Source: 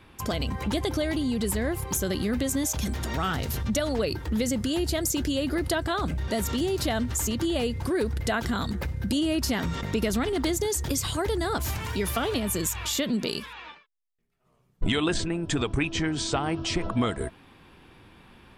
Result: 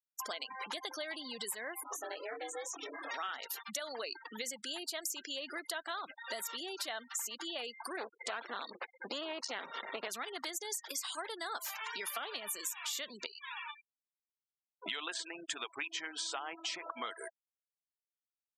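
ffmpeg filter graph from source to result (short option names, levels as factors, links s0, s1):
-filter_complex "[0:a]asettb=1/sr,asplit=3[s0][s1][s2];[s0]atrim=end=1.834[s3];[s1]atrim=start=1.83:end=3.11,asetpts=PTS-STARTPTS,afade=t=in:d=0.004:c=qsin,afade=t=out:st=1.276:d=0.004:c=qsin,lowpass=f=2800:p=1,aeval=exprs='val(0)*sin(2*PI*220*n/s)':c=same,asplit=2[s4][s5];[s5]adelay=22,volume=0.631[s6];[s4][s6]amix=inputs=2:normalize=0,atrim=end_sample=56448[s7];[s2]atrim=start=3.106[s8];[s3][s7]acrossfade=d=0.004:c1=hsin:c2=qsin[s9];[s9][s8]acrossfade=d=0.004:c1=qsin:c2=hsin,asettb=1/sr,asplit=3[s10][s11][s12];[s10]atrim=end=7.974[s13];[s11]atrim=start=7.97:end=10.08,asetpts=PTS-STARTPTS,afade=t=in:d=0.004:c=qsin,afade=t=out:st=2.106:d=0.004:c=qsin,lowshelf=f=490:g=9,aeval=exprs='clip(val(0),-1,0.0355)':c=same,highpass=220,lowpass=7600[s14];[s12]atrim=start=10.076[s15];[s13][s14]acrossfade=d=0.004:c1=hsin:c2=qsin[s16];[s16][s15]acrossfade=d=0.004:c1=qsin:c2=hsin,asettb=1/sr,asplit=3[s17][s18][s19];[s17]atrim=end=13.264[s20];[s18]atrim=start=13.26:end=13.68,asetpts=PTS-STARTPTS,afade=t=in:d=0.004:c=qsin,afade=t=out:st=0.416:d=0.004:c=qsin,lowshelf=f=140:g=9.5,asoftclip=type=hard:threshold=0.075,acompressor=threshold=0.0141:ratio=5:attack=3.2:release=140:knee=1:detection=peak[s21];[s19]atrim=start=13.676[s22];[s20][s21]acrossfade=d=0.004:c1=hsin:c2=qsin[s23];[s23][s22]acrossfade=d=0.004:c1=qsin:c2=hsin,highpass=880,afftfilt=real='re*gte(hypot(re,im),0.0126)':imag='im*gte(hypot(re,im),0.0126)':win_size=1024:overlap=0.75,acompressor=threshold=0.00562:ratio=3,volume=1.58"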